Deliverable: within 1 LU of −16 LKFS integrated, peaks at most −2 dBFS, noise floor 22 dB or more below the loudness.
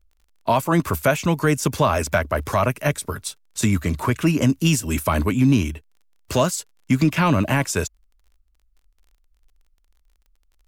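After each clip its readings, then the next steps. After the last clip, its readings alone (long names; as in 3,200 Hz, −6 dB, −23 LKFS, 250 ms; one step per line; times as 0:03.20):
crackle rate 21 per second; integrated loudness −21.0 LKFS; sample peak −7.5 dBFS; target loudness −16.0 LKFS
→ click removal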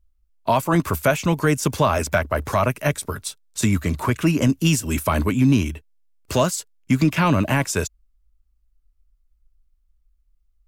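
crackle rate 0.094 per second; integrated loudness −21.0 LKFS; sample peak −7.5 dBFS; target loudness −16.0 LKFS
→ level +5 dB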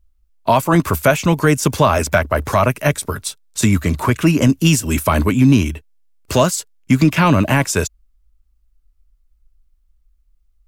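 integrated loudness −16.5 LKFS; sample peak −2.5 dBFS; background noise floor −59 dBFS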